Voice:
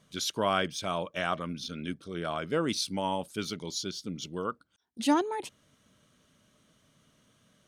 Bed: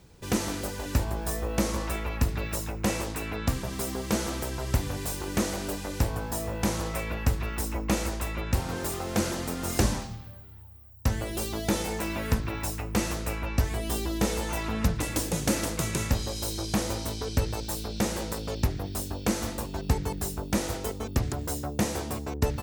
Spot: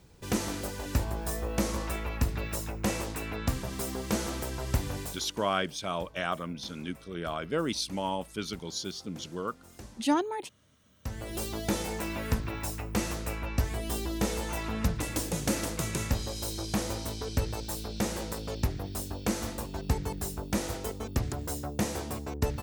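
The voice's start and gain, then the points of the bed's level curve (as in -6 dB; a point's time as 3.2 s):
5.00 s, -1.0 dB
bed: 5 s -2.5 dB
5.45 s -23 dB
10.69 s -23 dB
11.35 s -3 dB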